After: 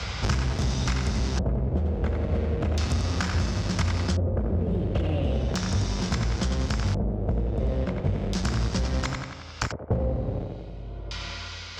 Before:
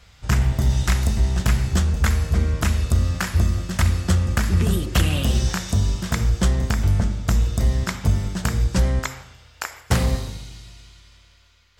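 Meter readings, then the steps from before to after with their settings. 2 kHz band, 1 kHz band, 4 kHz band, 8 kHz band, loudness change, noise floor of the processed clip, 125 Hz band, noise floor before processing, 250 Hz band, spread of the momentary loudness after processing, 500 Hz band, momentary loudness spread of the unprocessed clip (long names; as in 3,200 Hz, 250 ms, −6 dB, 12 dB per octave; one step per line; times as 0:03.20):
−6.0 dB, −3.5 dB, −3.5 dB, −7.5 dB, −6.0 dB, −38 dBFS, −5.5 dB, −52 dBFS, −3.0 dB, 8 LU, +1.0 dB, 4 LU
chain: notch filter 1,800 Hz, Q 13
in parallel at −5 dB: comparator with hysteresis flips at −28 dBFS
on the sum: high-pass filter 55 Hz
tape delay 89 ms, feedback 48%, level −4 dB, low-pass 5,800 Hz
auto-filter low-pass square 0.36 Hz 550–5,500 Hz
multiband upward and downward compressor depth 100%
level −9 dB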